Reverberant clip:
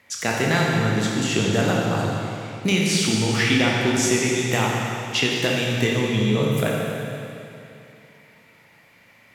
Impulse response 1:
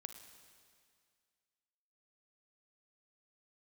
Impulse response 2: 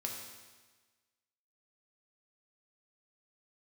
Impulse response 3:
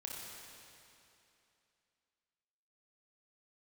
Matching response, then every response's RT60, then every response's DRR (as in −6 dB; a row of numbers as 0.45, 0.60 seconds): 3; 2.1, 1.3, 2.8 seconds; 7.5, −0.5, −3.5 decibels